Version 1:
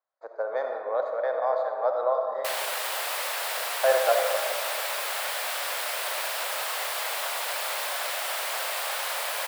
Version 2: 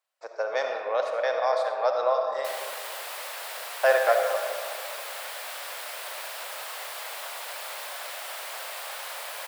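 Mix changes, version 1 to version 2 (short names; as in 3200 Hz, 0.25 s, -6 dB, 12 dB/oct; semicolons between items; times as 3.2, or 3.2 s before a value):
speech: remove running mean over 16 samples; background -6.5 dB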